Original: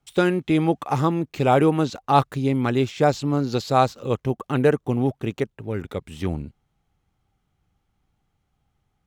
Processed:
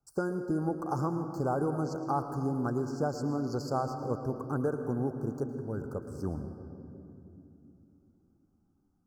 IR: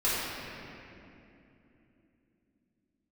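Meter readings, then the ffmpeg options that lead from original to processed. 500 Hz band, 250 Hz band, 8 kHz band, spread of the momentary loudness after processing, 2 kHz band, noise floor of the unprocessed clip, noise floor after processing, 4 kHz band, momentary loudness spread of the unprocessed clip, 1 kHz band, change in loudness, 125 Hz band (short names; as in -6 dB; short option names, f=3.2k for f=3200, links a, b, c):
-11.0 dB, -9.5 dB, -10.0 dB, 12 LU, -15.5 dB, -74 dBFS, -72 dBFS, -19.0 dB, 10 LU, -12.0 dB, -11.0 dB, -10.0 dB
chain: -filter_complex "[0:a]acompressor=threshold=-18dB:ratio=6,asuperstop=centerf=2700:order=20:qfactor=0.91,asplit=2[a][b];[1:a]atrim=start_sample=2205,adelay=108[c];[b][c]afir=irnorm=-1:irlink=0,volume=-19dB[d];[a][d]amix=inputs=2:normalize=0,volume=-8.5dB"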